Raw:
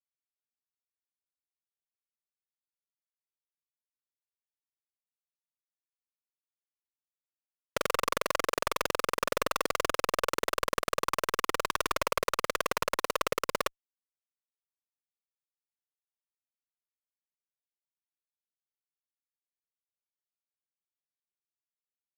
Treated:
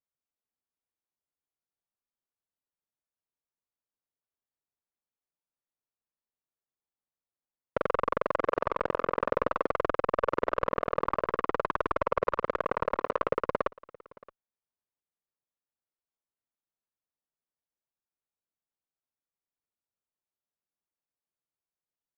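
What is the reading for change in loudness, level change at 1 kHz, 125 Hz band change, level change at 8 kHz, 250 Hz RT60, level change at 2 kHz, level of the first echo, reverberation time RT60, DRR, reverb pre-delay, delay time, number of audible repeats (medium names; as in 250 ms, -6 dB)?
+0.5 dB, +1.5 dB, +4.0 dB, under -25 dB, no reverb, -3.5 dB, -23.5 dB, no reverb, no reverb, no reverb, 622 ms, 1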